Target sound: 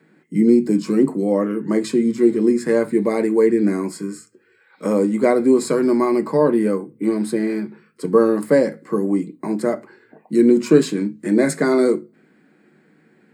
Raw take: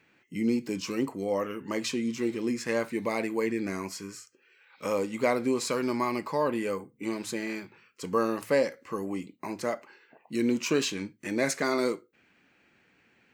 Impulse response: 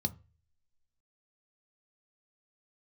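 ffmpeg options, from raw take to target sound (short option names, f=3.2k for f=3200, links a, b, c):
-filter_complex "[0:a]asettb=1/sr,asplit=3[a][b][c];[a]atrim=end=6.334[d];[b]atrim=start=6.33:end=8.35,asetpts=PTS-STARTPTS,afade=t=in:d=0.004:c=qsin,afade=t=out:st=2.016:d=0.004:c=qsin,bandreject=f=7.2k:w=5.5[e];[c]atrim=start=8.346[f];[d][e]acrossfade=d=0.004:c1=hsin:c2=qsin[g];[g][f]acrossfade=d=0.004:c1=qsin:c2=hsin[h];[1:a]atrim=start_sample=2205,asetrate=88200,aresample=44100[i];[h][i]afir=irnorm=-1:irlink=0,volume=6.5dB"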